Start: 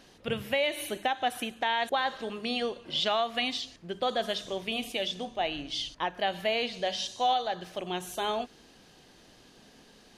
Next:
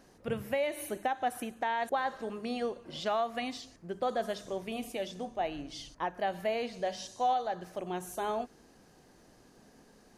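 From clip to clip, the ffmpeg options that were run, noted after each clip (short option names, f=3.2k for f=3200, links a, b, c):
-af "equalizer=f=3.3k:t=o:w=1.1:g=-13,volume=-1.5dB"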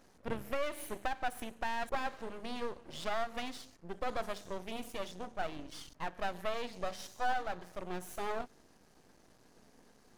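-af "aeval=exprs='max(val(0),0)':c=same"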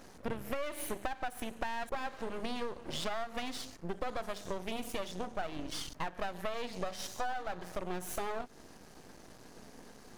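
-af "acompressor=threshold=-42dB:ratio=6,volume=9.5dB"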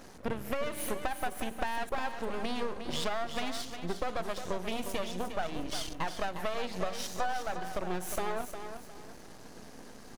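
-af "aecho=1:1:357|714|1071:0.355|0.106|0.0319,volume=3dB"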